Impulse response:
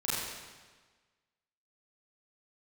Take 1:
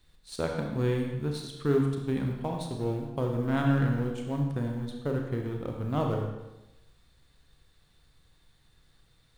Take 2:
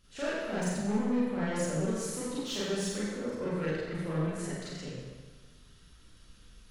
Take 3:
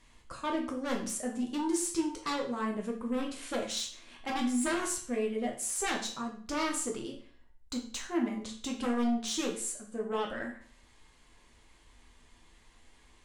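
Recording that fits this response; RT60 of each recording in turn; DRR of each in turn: 2; 1.0 s, 1.4 s, 0.50 s; 1.5 dB, -10.0 dB, -0.5 dB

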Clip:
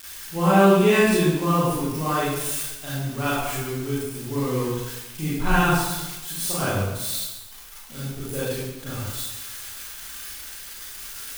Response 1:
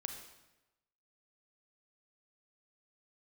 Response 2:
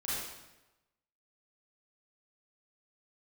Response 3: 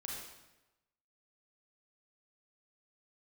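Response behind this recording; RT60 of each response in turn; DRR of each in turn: 2; 1.0 s, 1.0 s, 1.0 s; 4.5 dB, -10.0 dB, -3.5 dB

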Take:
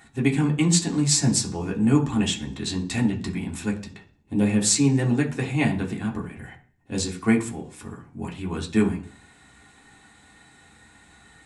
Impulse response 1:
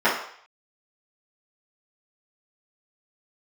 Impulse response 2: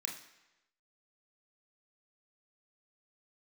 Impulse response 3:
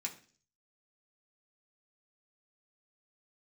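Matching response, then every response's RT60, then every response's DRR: 3; 0.60 s, 1.0 s, 0.45 s; -13.0 dB, 0.0 dB, -2.0 dB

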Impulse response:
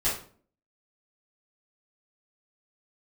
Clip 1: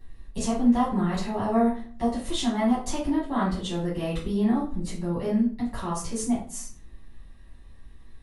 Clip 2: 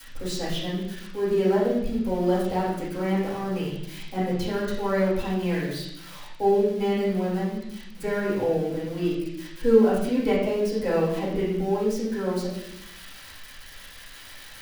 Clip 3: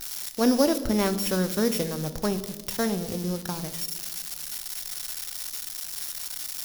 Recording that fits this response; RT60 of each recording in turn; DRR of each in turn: 1; 0.45 s, 0.80 s, 1.4 s; -10.0 dB, -14.0 dB, 9.5 dB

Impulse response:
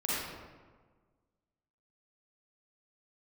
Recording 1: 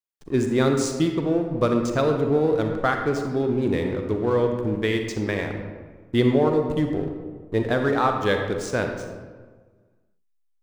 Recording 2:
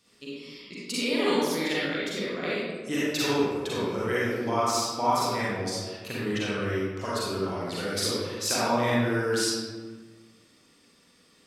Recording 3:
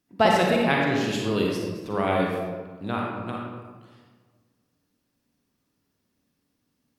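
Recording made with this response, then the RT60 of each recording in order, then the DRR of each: 2; 1.5 s, 1.5 s, 1.5 s; 4.0 dB, -8.5 dB, -2.0 dB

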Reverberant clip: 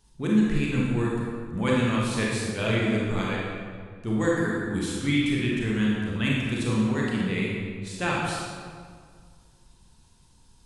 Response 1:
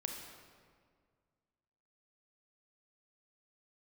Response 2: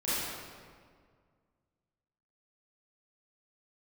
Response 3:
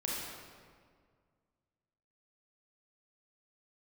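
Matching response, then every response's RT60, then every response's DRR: 3; 1.9 s, 1.9 s, 1.9 s; 2.5 dB, -12.5 dB, -4.5 dB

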